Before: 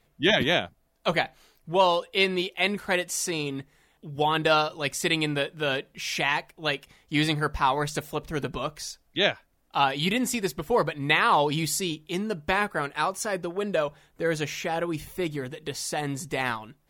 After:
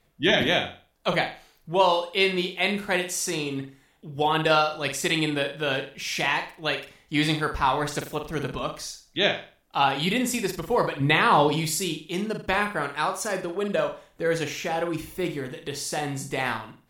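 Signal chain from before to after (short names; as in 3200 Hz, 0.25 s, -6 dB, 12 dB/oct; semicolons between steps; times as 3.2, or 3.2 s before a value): 11–11.49 low shelf 350 Hz +9 dB; flutter echo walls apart 7.6 m, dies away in 0.38 s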